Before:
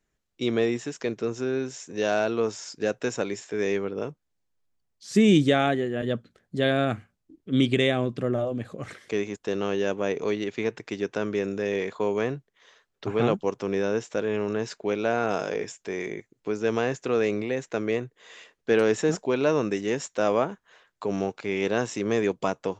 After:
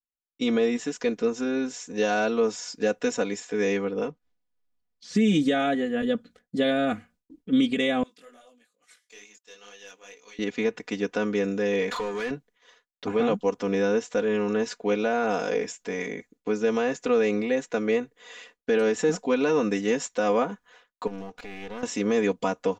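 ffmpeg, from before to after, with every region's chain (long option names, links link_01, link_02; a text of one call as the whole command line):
ffmpeg -i in.wav -filter_complex "[0:a]asettb=1/sr,asplit=3[link_01][link_02][link_03];[link_01]atrim=end=4.074[link_04];[link_02]atrim=start=4.07:end=5.17,asetpts=PTS-STARTPTS,afade=type=in:duration=0.004:curve=qsin,afade=type=out:start_time=1.096:duration=0.004:curve=qsin,lowpass=4600,agate=range=-10dB:threshold=-60dB:ratio=16:release=100:detection=peak,acompressor=mode=upward:threshold=-46dB:ratio=2.5:attack=3.2:release=140:knee=2.83:detection=peak[link_05];[link_03]atrim=start=5.166[link_06];[link_04][link_05]acrossfade=duration=0.004:curve1=hsin:curve2=qsin[link_07];[link_07][link_06]acrossfade=duration=0.004:curve1=qsin:curve2=hsin,asettb=1/sr,asplit=3[link_08][link_09][link_10];[link_08]atrim=end=8.034[link_11];[link_09]atrim=start=8.03:end=10.39,asetpts=PTS-STARTPTS,afade=type=in:duration=0.004:curve=qsin,afade=type=out:start_time=2.356:duration=0.004:curve=qsin,aderivative,flanger=delay=18.5:depth=3.8:speed=2.3,aeval=exprs='(tanh(63.1*val(0)+0.15)-tanh(0.15))/63.1':channel_layout=same[link_12];[link_10]atrim=start=10.386[link_13];[link_11][link_12]acrossfade=duration=0.004:curve1=hsin:curve2=qsin[link_14];[link_14][link_13]acrossfade=duration=0.004:curve1=qsin:curve2=hsin,asettb=1/sr,asplit=3[link_15][link_16][link_17];[link_15]atrim=end=11.914[link_18];[link_16]atrim=start=11.91:end=12.31,asetpts=PTS-STARTPTS,afade=type=in:duration=0.004:curve=qsin,afade=type=out:start_time=0.396:duration=0.004:curve=qsin,equalizer=frequency=690:width=0.56:gain=-9,acompressor=threshold=-42dB:ratio=16:attack=3.2:release=140:knee=1:detection=peak,asplit=2[link_19][link_20];[link_20]highpass=frequency=720:poles=1,volume=34dB,asoftclip=type=tanh:threshold=-22.5dB[link_21];[link_19][link_21]amix=inputs=2:normalize=0,lowpass=frequency=2900:poles=1,volume=-6dB[link_22];[link_17]atrim=start=12.306[link_23];[link_18][link_22]acrossfade=duration=0.004:curve1=hsin:curve2=qsin[link_24];[link_24][link_23]acrossfade=duration=0.004:curve1=qsin:curve2=hsin,asettb=1/sr,asplit=3[link_25][link_26][link_27];[link_25]atrim=end=21.074[link_28];[link_26]atrim=start=21.07:end=21.83,asetpts=PTS-STARTPTS,afade=type=in:duration=0.004:curve=qsin,afade=type=out:start_time=0.756:duration=0.004:curve=qsin,highshelf=frequency=7300:gain=-8.5,acompressor=threshold=-36dB:ratio=3:attack=3.2:release=140:knee=1:detection=peak,aeval=exprs='clip(val(0),-1,0.00596)':channel_layout=same[link_29];[link_27]atrim=start=21.826[link_30];[link_28][link_29]acrossfade=duration=0.004:curve1=hsin:curve2=qsin[link_31];[link_31][link_30]acrossfade=duration=0.004:curve1=qsin:curve2=hsin,agate=range=-33dB:threshold=-52dB:ratio=3:detection=peak,aecho=1:1:4.1:0.88,alimiter=limit=-13.5dB:level=0:latency=1:release=145" out.wav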